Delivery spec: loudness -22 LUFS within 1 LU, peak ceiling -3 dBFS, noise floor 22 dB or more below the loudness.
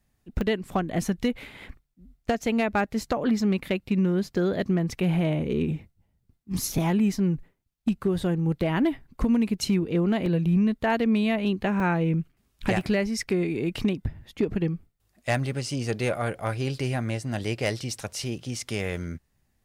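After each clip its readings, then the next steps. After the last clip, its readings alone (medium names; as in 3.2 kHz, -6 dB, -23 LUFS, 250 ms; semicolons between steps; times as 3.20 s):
clipped samples 0.2%; clipping level -15.5 dBFS; dropouts 4; longest dropout 1.5 ms; loudness -26.5 LUFS; peak level -15.5 dBFS; loudness target -22.0 LUFS
-> clip repair -15.5 dBFS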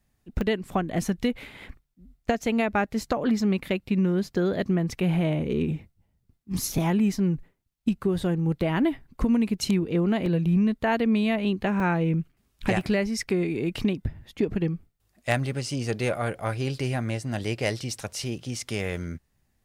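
clipped samples 0.0%; dropouts 4; longest dropout 1.5 ms
-> interpolate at 0.41/10.26/11.80/12.81 s, 1.5 ms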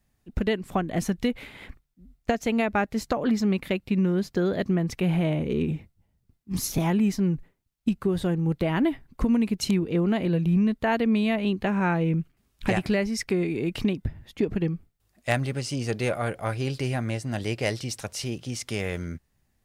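dropouts 0; loudness -26.5 LUFS; peak level -6.5 dBFS; loudness target -22.0 LUFS
-> trim +4.5 dB; peak limiter -3 dBFS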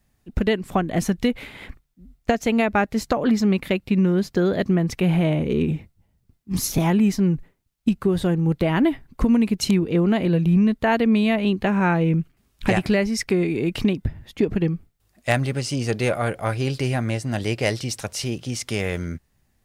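loudness -22.0 LUFS; peak level -3.0 dBFS; noise floor -67 dBFS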